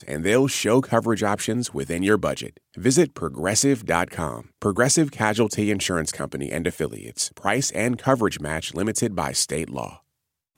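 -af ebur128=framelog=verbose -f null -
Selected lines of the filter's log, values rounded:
Integrated loudness:
  I:         -22.8 LUFS
  Threshold: -33.0 LUFS
Loudness range:
  LRA:         2.6 LU
  Threshold: -43.1 LUFS
  LRA low:   -24.5 LUFS
  LRA high:  -21.9 LUFS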